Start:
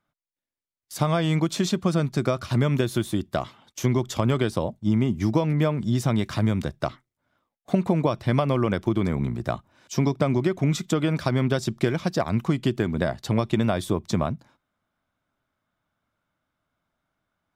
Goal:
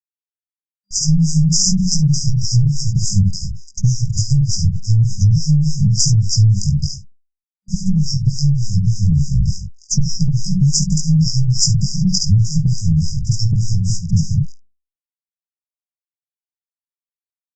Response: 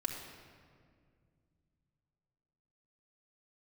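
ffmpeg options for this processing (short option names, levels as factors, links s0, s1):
-filter_complex "[0:a]aeval=exprs='if(lt(val(0),0),0.447*val(0),val(0))':c=same,acrusher=bits=7:mix=0:aa=0.5,equalizer=f=220:t=o:w=1.4:g=-9,aecho=1:1:71:0.501,flanger=delay=18:depth=3.2:speed=0.79,asettb=1/sr,asplit=3[s0][s1][s2];[s0]atrim=end=12.994[s3];[s1]atrim=start=12.99:end=13.97,asetpts=PTS-STARTPTS,afade=t=in:d=0.004:c=qsin,afade=t=out:st=0.976:d=0.004:c=qsin,lowshelf=f=71:g=5[s4];[s2]atrim=start=13.966[s5];[s3][s4]acrossfade=d=0.004:c1=hsin:c2=qsin[s6];[s6][s5]acrossfade=d=0.004:c1=qsin:c2=hsin,acrossover=split=420[s7][s8];[s7]aeval=exprs='val(0)*(1-1/2+1/2*cos(2*PI*3.4*n/s))':c=same[s9];[s8]aeval=exprs='val(0)*(1-1/2-1/2*cos(2*PI*3.4*n/s))':c=same[s10];[s9][s10]amix=inputs=2:normalize=0,aresample=16000,aresample=44100,afftfilt=real='re*(1-between(b*sr/4096,200,4800))':imag='im*(1-between(b*sr/4096,200,4800))':win_size=4096:overlap=0.75,alimiter=level_in=47.3:limit=0.891:release=50:level=0:latency=1,volume=0.794" -ar 48000 -c:a libopus -b:a 64k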